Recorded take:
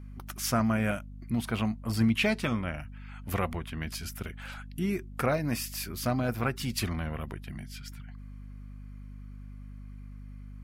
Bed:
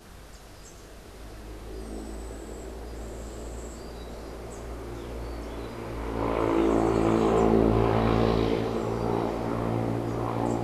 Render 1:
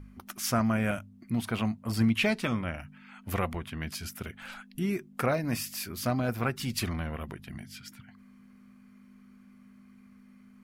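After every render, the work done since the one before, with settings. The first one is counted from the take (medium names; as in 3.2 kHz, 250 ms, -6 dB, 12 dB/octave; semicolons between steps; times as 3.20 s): de-hum 50 Hz, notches 3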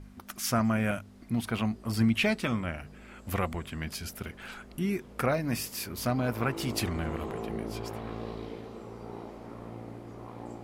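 add bed -15 dB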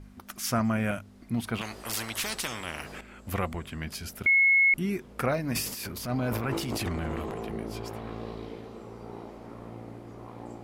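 1.61–3.01 s: spectrum-flattening compressor 4:1; 4.26–4.74 s: bleep 2.18 kHz -17.5 dBFS; 5.52–7.53 s: transient shaper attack -9 dB, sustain +9 dB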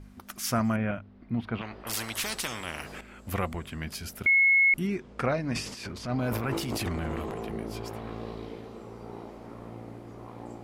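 0.76–1.87 s: distance through air 340 m; 4.87–6.19 s: Bessel low-pass 5.9 kHz, order 4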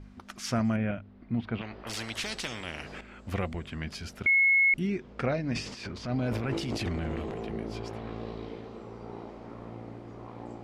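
low-pass 5.6 kHz 12 dB/octave; dynamic bell 1.1 kHz, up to -7 dB, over -45 dBFS, Q 1.4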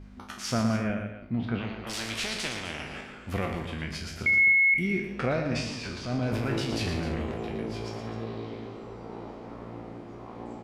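spectral sustain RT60 0.44 s; multi-tap echo 116/184/258 ms -7.5/-18.5/-12.5 dB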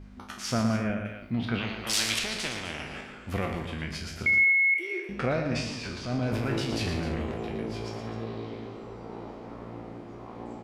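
1.05–2.19 s: treble shelf 2.1 kHz +11.5 dB; 4.44–5.09 s: rippled Chebyshev high-pass 320 Hz, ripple 3 dB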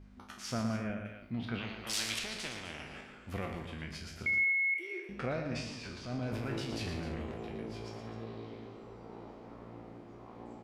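trim -8 dB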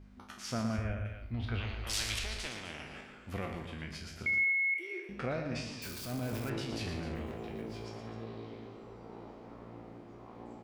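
0.78–2.46 s: resonant low shelf 110 Hz +13.5 dB, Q 3; 5.82–6.50 s: zero-crossing glitches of -36.5 dBFS; 7.15–7.86 s: block-companded coder 7-bit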